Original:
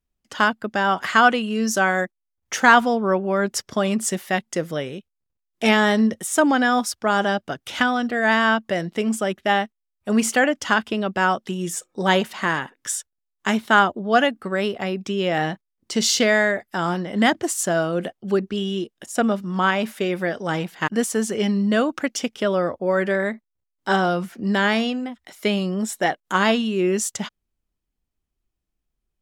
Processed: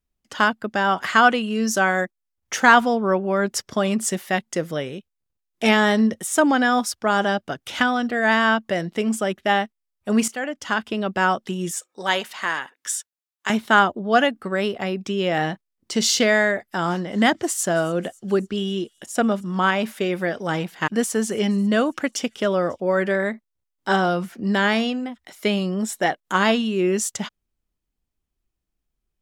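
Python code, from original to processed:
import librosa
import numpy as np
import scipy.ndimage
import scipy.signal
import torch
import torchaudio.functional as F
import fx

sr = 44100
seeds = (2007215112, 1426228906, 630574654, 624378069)

y = fx.highpass(x, sr, hz=920.0, slope=6, at=(11.71, 13.5))
y = fx.echo_wet_highpass(y, sr, ms=272, feedback_pct=58, hz=5300.0, wet_db=-21.5, at=(16.89, 22.8), fade=0.02)
y = fx.edit(y, sr, fx.fade_in_from(start_s=10.28, length_s=0.82, floor_db=-14.5), tone=tone)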